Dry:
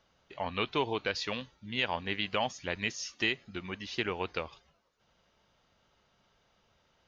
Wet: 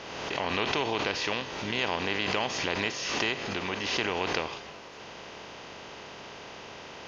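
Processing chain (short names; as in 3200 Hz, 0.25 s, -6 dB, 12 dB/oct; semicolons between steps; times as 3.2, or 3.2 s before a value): per-bin compression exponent 0.4; backwards sustainer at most 33 dB/s; gain -3.5 dB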